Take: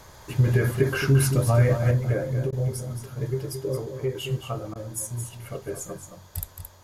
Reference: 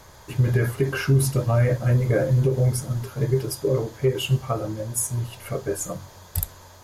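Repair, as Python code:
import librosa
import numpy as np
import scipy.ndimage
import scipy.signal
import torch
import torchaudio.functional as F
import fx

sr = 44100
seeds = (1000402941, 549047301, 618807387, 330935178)

y = fx.fix_interpolate(x, sr, at_s=(2.51, 4.74), length_ms=14.0)
y = fx.fix_echo_inverse(y, sr, delay_ms=221, level_db=-8.0)
y = fx.fix_level(y, sr, at_s=1.91, step_db=6.5)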